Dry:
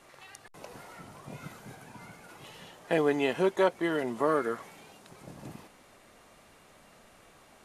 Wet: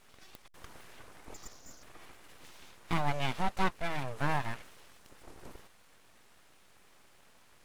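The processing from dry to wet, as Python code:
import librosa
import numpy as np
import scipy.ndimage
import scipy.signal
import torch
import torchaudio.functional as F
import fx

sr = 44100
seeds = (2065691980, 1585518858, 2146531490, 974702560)

y = fx.freq_invert(x, sr, carrier_hz=3700, at=(1.34, 1.83))
y = np.abs(y)
y = y * librosa.db_to_amplitude(-2.5)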